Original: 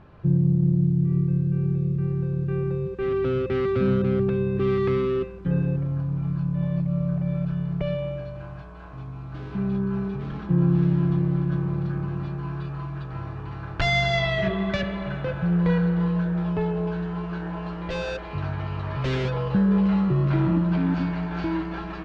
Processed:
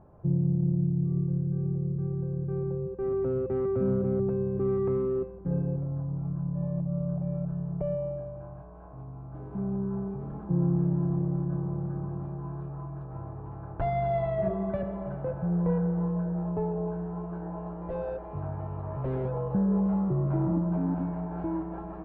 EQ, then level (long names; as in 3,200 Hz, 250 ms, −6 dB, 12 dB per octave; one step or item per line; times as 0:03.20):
low-pass with resonance 760 Hz, resonance Q 1.7
−6.0 dB